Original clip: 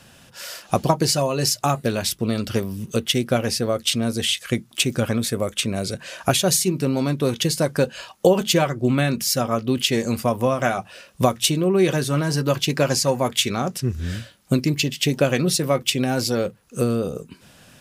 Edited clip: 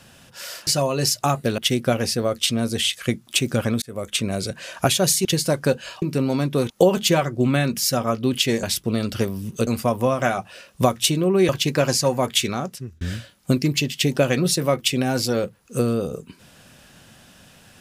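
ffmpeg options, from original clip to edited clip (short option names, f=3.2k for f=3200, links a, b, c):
-filter_complex "[0:a]asplit=11[a][b][c][d][e][f][g][h][i][j][k];[a]atrim=end=0.672[l];[b]atrim=start=1.068:end=1.982[m];[c]atrim=start=3.018:end=5.26,asetpts=PTS-STARTPTS,afade=t=out:st=2.238:d=0.004:c=hsin[n];[d]atrim=start=5.26:end=6.692,asetpts=PTS-STARTPTS,afade=t=in:d=0.32[o];[e]atrim=start=7.368:end=8.142[p];[f]atrim=start=6.688:end=7.372[q];[g]atrim=start=8.138:end=10.072[r];[h]atrim=start=1.978:end=3.022[s];[i]atrim=start=10.068:end=11.892[t];[j]atrim=start=12.508:end=14.03,asetpts=PTS-STARTPTS,afade=t=out:st=0.952:d=0.57[u];[k]atrim=start=14.03,asetpts=PTS-STARTPTS,afade=t=in:d=0.004:c=hsin[v];[l][m]acrossfade=d=0.004:c1=hsin:c2=hsin[w];[n][o]concat=n=2:v=0:a=1[x];[w][x]acrossfade=d=0.004:c1=hsin:c2=hsin[y];[y][p]acrossfade=d=0.004:c1=hsin:c2=hsin[z];[z][q]acrossfade=d=0.004:c1=hsin:c2=hsin[aa];[aa][r]acrossfade=d=0.004:c1=hsin:c2=hsin[ab];[ab][s]acrossfade=d=0.004:c1=hsin:c2=hsin[ac];[ac][t]acrossfade=d=0.004:c1=hsin:c2=hsin[ad];[u][v]concat=n=2:v=0:a=1[ae];[ad][ae]acrossfade=d=0.004:c1=hsin:c2=hsin"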